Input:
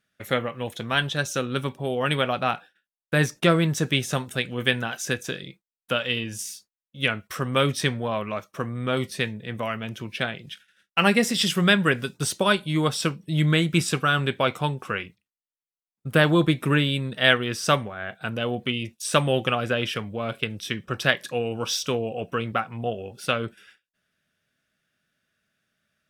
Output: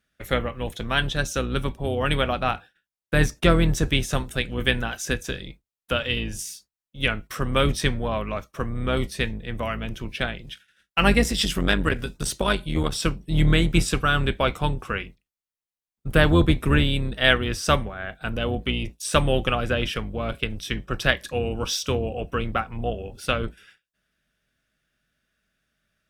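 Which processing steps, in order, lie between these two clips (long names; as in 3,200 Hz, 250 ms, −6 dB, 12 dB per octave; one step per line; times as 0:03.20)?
sub-octave generator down 2 octaves, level +1 dB
0:11.23–0:13.01: saturating transformer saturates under 480 Hz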